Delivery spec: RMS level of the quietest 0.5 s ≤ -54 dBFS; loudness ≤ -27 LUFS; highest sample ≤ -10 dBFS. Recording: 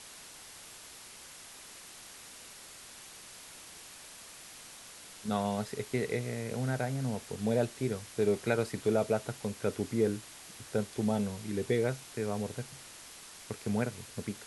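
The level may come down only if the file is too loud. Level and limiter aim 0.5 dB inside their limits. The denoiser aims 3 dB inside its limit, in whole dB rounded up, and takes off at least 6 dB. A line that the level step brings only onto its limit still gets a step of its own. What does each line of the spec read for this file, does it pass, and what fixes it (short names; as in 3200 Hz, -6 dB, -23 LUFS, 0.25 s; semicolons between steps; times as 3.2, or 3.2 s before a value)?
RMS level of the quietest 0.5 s -50 dBFS: fail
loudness -33.5 LUFS: OK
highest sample -15.0 dBFS: OK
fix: denoiser 7 dB, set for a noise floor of -50 dBFS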